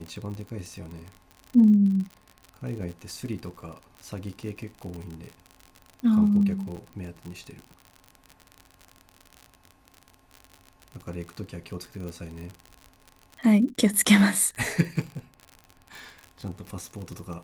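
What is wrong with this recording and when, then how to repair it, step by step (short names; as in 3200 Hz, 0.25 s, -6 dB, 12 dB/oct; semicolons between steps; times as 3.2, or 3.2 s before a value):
crackle 52/s -33 dBFS
6.76–6.77 gap 8.3 ms
12.09 pop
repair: de-click; interpolate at 6.76, 8.3 ms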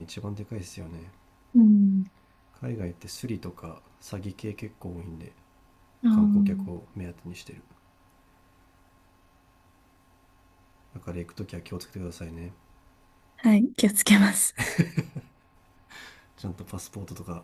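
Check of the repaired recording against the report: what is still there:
none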